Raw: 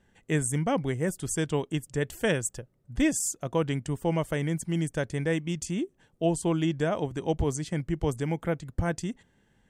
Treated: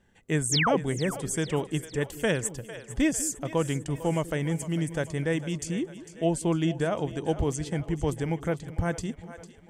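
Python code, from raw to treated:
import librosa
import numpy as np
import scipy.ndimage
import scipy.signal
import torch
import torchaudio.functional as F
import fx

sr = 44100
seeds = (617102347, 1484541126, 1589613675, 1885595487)

y = fx.spec_paint(x, sr, seeds[0], shape='fall', start_s=0.51, length_s=0.26, low_hz=310.0, high_hz=8100.0, level_db=-25.0)
y = fx.echo_split(y, sr, split_hz=410.0, low_ms=197, high_ms=451, feedback_pct=52, wet_db=-14)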